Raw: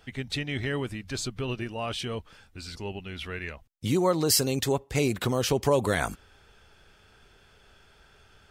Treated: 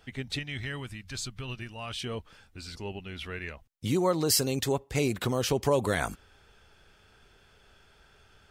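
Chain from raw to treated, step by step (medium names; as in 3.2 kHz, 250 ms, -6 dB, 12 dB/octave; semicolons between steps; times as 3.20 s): 0.39–2.04 s: peaking EQ 410 Hz -10 dB 2.1 oct; trim -2 dB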